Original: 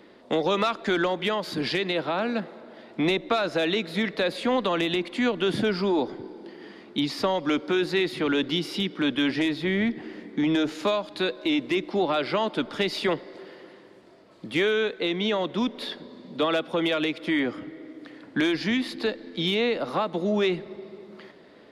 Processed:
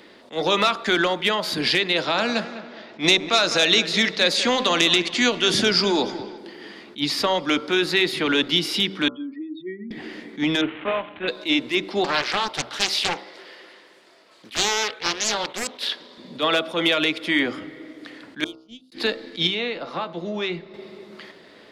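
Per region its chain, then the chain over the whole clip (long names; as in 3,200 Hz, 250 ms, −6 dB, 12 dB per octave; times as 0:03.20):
0:01.95–0:06.38: low-pass that shuts in the quiet parts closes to 2,700 Hz, open at −21.5 dBFS + parametric band 6,100 Hz +13 dB 0.96 octaves + delay with a low-pass on its return 204 ms, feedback 36%, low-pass 2,700 Hz, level −13 dB
0:09.08–0:09.91: expanding power law on the bin magnitudes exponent 3.5 + high-pass filter 460 Hz
0:10.61–0:11.28: variable-slope delta modulation 16 kbit/s + high-pass filter 91 Hz + amplitude modulation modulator 160 Hz, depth 25%
0:12.04–0:16.18: high-pass filter 710 Hz 6 dB per octave + highs frequency-modulated by the lows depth 0.92 ms
0:18.44–0:18.92: noise gate −21 dBFS, range −42 dB + elliptic band-stop filter 620–2,900 Hz, stop band 50 dB + bass and treble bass +4 dB, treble +5 dB
0:19.47–0:20.74: high-frequency loss of the air 96 metres + tuned comb filter 170 Hz, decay 0.19 s
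whole clip: tilt shelving filter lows −4.5 dB, about 1,400 Hz; hum removal 64.33 Hz, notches 22; level that may rise only so fast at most 290 dB per second; level +6 dB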